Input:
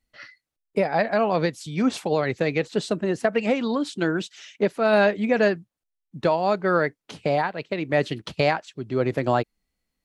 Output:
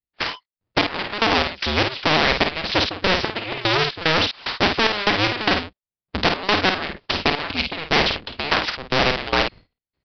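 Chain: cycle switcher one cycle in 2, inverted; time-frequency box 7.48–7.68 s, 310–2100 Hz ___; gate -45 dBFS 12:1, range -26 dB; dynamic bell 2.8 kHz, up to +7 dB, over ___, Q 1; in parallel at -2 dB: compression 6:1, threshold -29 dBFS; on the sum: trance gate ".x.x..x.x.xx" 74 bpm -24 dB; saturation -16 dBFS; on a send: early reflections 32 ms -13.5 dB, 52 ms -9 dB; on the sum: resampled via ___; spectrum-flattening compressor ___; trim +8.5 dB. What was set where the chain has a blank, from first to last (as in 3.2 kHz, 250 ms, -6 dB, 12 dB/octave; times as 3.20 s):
-21 dB, -39 dBFS, 11.025 kHz, 2:1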